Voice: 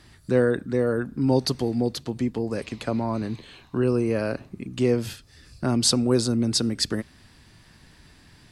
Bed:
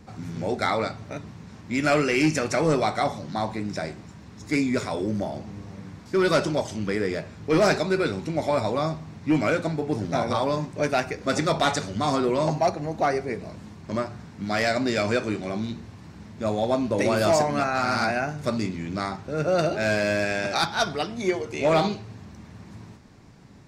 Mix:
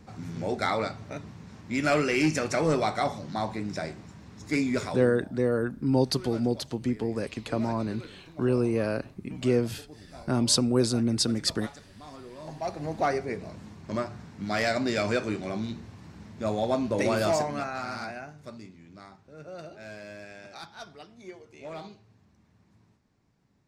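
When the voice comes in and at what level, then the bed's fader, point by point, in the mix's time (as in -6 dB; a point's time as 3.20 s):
4.65 s, -2.5 dB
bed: 4.87 s -3 dB
5.25 s -22 dB
12.35 s -22 dB
12.85 s -3 dB
17.13 s -3 dB
18.75 s -19.5 dB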